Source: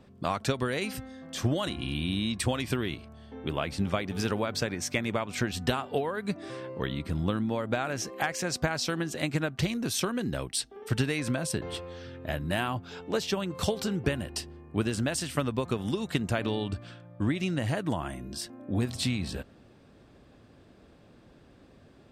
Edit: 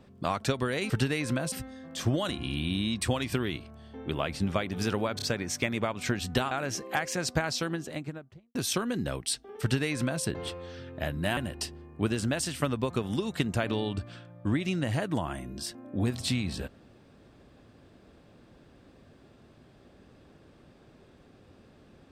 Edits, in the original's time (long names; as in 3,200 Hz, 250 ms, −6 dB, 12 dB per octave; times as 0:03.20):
0:04.54: stutter 0.03 s, 3 plays
0:05.83–0:07.78: remove
0:08.73–0:09.82: fade out and dull
0:10.88–0:11.50: duplicate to 0:00.90
0:12.64–0:14.12: remove